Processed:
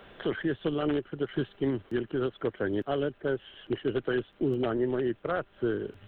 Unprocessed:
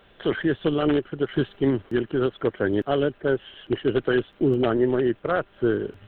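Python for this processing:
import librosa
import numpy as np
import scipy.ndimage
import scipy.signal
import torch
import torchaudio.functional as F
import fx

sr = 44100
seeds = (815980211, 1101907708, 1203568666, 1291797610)

y = fx.band_squash(x, sr, depth_pct=40)
y = y * librosa.db_to_amplitude(-7.0)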